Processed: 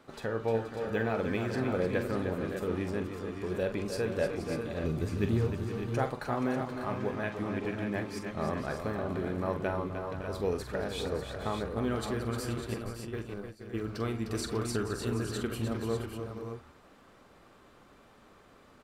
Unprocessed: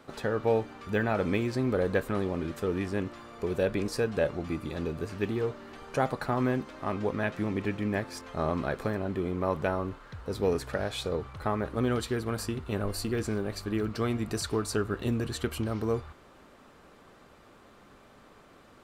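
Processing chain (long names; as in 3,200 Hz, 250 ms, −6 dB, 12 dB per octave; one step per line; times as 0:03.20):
0:04.84–0:05.47: bass and treble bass +11 dB, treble +6 dB
0:12.74–0:13.85: noise gate −28 dBFS, range −22 dB
on a send: multi-tap delay 44/305/476/561/595 ms −9.5/−8/−11.5/−11.5/−8 dB
on the sum: level −4.5 dB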